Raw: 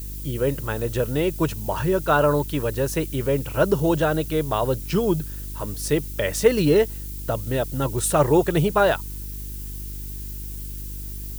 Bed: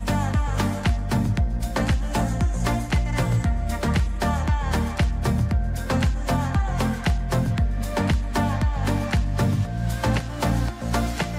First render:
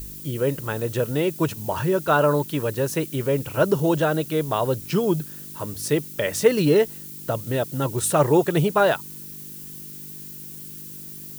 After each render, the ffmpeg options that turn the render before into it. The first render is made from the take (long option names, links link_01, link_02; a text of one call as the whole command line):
ffmpeg -i in.wav -af "bandreject=frequency=50:width_type=h:width=4,bandreject=frequency=100:width_type=h:width=4" out.wav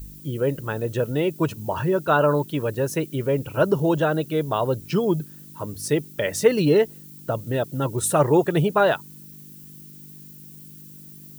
ffmpeg -i in.wav -af "afftdn=noise_reduction=9:noise_floor=-38" out.wav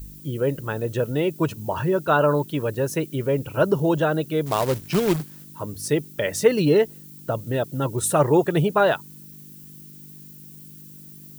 ffmpeg -i in.wav -filter_complex "[0:a]asettb=1/sr,asplit=3[link_01][link_02][link_03];[link_01]atrim=end=4.464[link_04];[link_02]atrim=start=4.46:end=5.44,asetpts=PTS-STARTPTS,afade=type=in:duration=0.004:curve=qsin,afade=type=out:start_time=0.976:duration=0.004:curve=qsin,acrusher=bits=2:mode=log:mix=0:aa=0.000001[link_05];[link_03]atrim=start=5.436[link_06];[link_04][link_05]acrossfade=duration=0.004:curve1=hsin:curve2=qsin[link_07];[link_07][link_06]acrossfade=duration=0.004:curve1=qsin:curve2=hsin" out.wav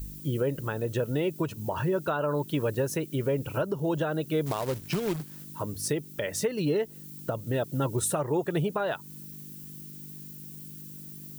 ffmpeg -i in.wav -af "acompressor=threshold=-23dB:ratio=3,alimiter=limit=-18dB:level=0:latency=1:release=425" out.wav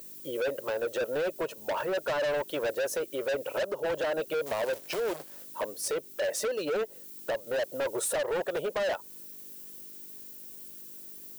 ffmpeg -i in.wav -af "highpass=frequency=550:width_type=q:width=4.1,volume=27dB,asoftclip=hard,volume=-27dB" out.wav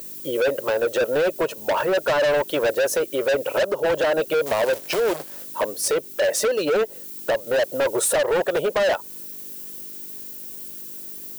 ffmpeg -i in.wav -af "volume=9.5dB" out.wav